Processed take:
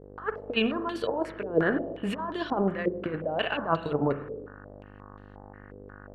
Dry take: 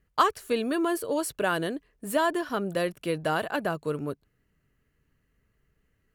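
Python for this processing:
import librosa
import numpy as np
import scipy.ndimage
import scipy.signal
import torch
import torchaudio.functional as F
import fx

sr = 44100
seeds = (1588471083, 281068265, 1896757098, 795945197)

y = fx.transient(x, sr, attack_db=1, sustain_db=-8)
y = fx.over_compress(y, sr, threshold_db=-31.0, ratio=-0.5)
y = fx.dmg_buzz(y, sr, base_hz=50.0, harmonics=37, level_db=-52.0, tilt_db=-4, odd_only=False)
y = fx.rev_spring(y, sr, rt60_s=1.1, pass_ms=(36, 50), chirp_ms=80, drr_db=8.5)
y = fx.filter_held_lowpass(y, sr, hz=5.6, low_hz=460.0, high_hz=3700.0)
y = y * 10.0 ** (1.5 / 20.0)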